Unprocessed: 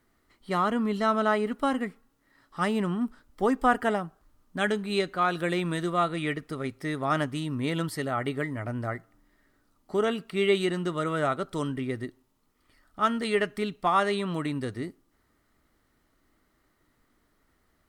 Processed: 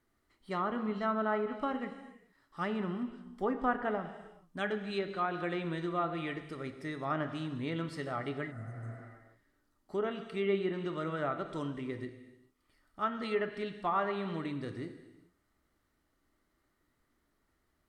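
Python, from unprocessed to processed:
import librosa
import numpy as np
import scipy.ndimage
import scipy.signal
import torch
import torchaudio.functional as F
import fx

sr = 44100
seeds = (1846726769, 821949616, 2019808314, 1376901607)

y = fx.rev_gated(x, sr, seeds[0], gate_ms=460, shape='falling', drr_db=7.5)
y = fx.spec_repair(y, sr, seeds[1], start_s=8.54, length_s=0.44, low_hz=220.0, high_hz=6000.0, source='after')
y = fx.env_lowpass_down(y, sr, base_hz=2200.0, full_db=-20.5)
y = F.gain(torch.from_numpy(y), -8.0).numpy()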